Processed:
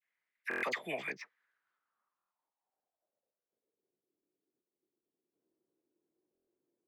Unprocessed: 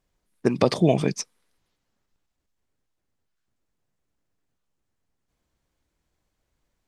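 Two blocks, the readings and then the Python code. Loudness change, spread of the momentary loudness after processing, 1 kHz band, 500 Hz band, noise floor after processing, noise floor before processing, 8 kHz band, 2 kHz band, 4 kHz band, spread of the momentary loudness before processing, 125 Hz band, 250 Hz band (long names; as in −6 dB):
−15.5 dB, 11 LU, −12.5 dB, −19.5 dB, below −85 dBFS, −79 dBFS, −22.5 dB, +1.5 dB, −14.0 dB, 13 LU, −33.0 dB, −25.5 dB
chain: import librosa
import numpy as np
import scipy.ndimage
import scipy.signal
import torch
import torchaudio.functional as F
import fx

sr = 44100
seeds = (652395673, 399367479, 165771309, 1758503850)

y = scipy.signal.sosfilt(scipy.signal.butter(2, 140.0, 'highpass', fs=sr, output='sos'), x)
y = np.repeat(scipy.signal.resample_poly(y, 1, 4), 4)[:len(y)]
y = fx.filter_sweep_bandpass(y, sr, from_hz=2000.0, to_hz=360.0, start_s=1.13, end_s=3.97, q=5.0)
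y = fx.dispersion(y, sr, late='lows', ms=50.0, hz=1400.0)
y = fx.buffer_glitch(y, sr, at_s=(0.49, 2.17, 6.33), block=1024, repeats=5)
y = F.gain(torch.from_numpy(y), 5.5).numpy()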